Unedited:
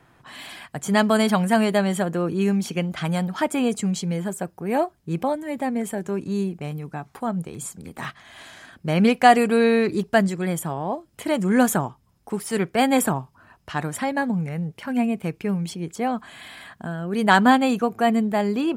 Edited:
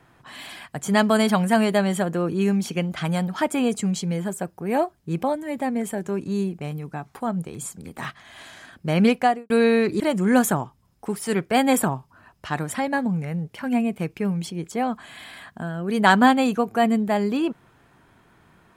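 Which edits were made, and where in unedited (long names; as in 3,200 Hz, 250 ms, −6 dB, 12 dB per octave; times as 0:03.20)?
0:09.08–0:09.50: fade out and dull
0:10.00–0:11.24: remove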